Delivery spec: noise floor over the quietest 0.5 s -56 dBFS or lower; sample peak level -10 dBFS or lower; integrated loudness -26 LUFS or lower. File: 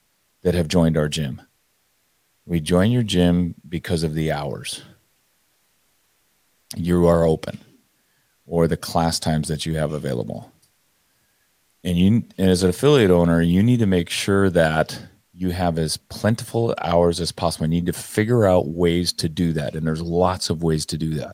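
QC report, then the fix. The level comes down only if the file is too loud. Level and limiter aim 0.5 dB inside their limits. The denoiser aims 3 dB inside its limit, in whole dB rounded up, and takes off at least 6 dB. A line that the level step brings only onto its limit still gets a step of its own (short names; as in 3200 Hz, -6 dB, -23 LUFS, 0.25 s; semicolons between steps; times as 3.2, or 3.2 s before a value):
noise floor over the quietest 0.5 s -66 dBFS: OK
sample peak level -4.5 dBFS: fail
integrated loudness -20.5 LUFS: fail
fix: gain -6 dB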